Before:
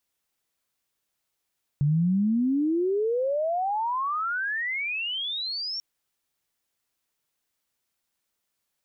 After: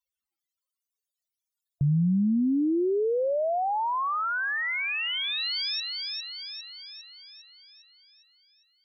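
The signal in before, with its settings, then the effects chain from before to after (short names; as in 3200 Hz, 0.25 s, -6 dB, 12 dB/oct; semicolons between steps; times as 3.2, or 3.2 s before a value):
chirp logarithmic 140 Hz -> 5600 Hz -19 dBFS -> -29 dBFS 3.99 s
on a send: thin delay 0.404 s, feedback 56%, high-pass 2800 Hz, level -3 dB; on the sum: loudest bins only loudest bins 32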